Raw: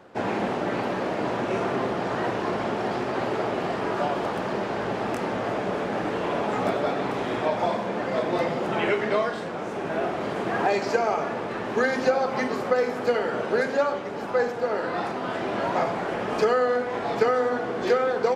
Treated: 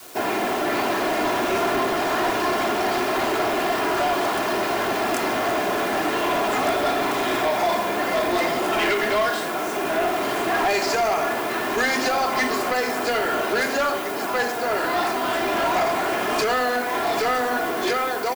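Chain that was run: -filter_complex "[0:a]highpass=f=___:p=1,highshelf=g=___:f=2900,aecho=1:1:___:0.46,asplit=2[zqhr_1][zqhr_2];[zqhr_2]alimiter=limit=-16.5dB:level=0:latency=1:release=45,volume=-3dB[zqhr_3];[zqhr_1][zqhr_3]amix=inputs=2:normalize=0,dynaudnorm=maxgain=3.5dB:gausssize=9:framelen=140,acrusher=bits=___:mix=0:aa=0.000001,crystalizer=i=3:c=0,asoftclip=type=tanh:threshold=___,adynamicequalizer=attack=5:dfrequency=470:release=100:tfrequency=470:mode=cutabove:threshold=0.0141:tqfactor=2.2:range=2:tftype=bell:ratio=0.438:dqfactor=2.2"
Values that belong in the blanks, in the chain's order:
330, -4.5, 2.9, 7, -15dB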